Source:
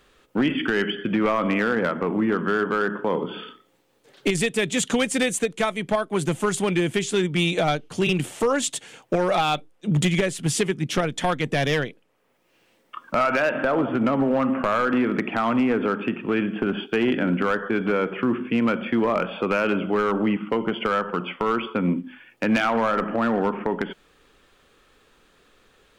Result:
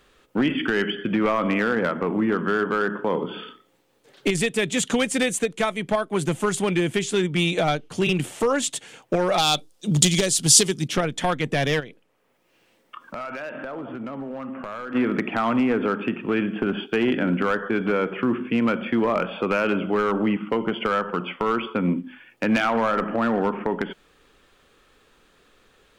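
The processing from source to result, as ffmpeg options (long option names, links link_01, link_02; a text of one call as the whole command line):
ffmpeg -i in.wav -filter_complex "[0:a]asettb=1/sr,asplit=3[link_01][link_02][link_03];[link_01]atrim=end=9.384[link_04];[link_02]atrim=start=9.38:end=10.88,asetpts=PTS-STARTPTS,afade=type=in:duration=0.004:curve=qsin,afade=type=out:start_time=1.496:duration=0.004:curve=qsin,highshelf=frequency=3200:width_type=q:width=1.5:gain=12[link_05];[link_03]atrim=start=10.876[link_06];[link_04][link_05]acrossfade=duration=0.004:curve1=hsin:curve2=qsin[link_07];[link_07][link_06]acrossfade=duration=0.004:curve1=qsin:curve2=hsin,asplit=3[link_08][link_09][link_10];[link_08]afade=type=out:start_time=11.79:duration=0.02[link_11];[link_09]acompressor=threshold=-34dB:ratio=3:attack=3.2:release=140:knee=1:detection=peak,afade=type=in:start_time=11.79:duration=0.02,afade=type=out:start_time=14.94:duration=0.02[link_12];[link_10]afade=type=in:start_time=14.94:duration=0.02[link_13];[link_11][link_12][link_13]amix=inputs=3:normalize=0" out.wav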